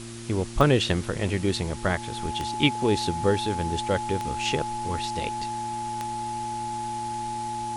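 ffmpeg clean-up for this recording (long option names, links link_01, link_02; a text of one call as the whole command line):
ffmpeg -i in.wav -af "adeclick=threshold=4,bandreject=frequency=115.5:width_type=h:width=4,bandreject=frequency=231:width_type=h:width=4,bandreject=frequency=346.5:width_type=h:width=4,bandreject=frequency=850:width=30,afwtdn=0.0079" out.wav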